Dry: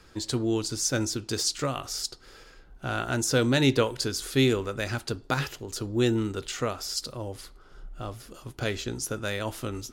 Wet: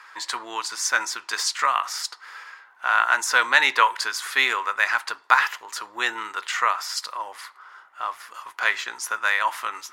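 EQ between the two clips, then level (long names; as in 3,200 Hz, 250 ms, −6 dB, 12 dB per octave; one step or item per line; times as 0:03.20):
high-pass with resonance 1,000 Hz, resonance Q 5.3
parametric band 1,900 Hz +12.5 dB 0.92 octaves
+1.0 dB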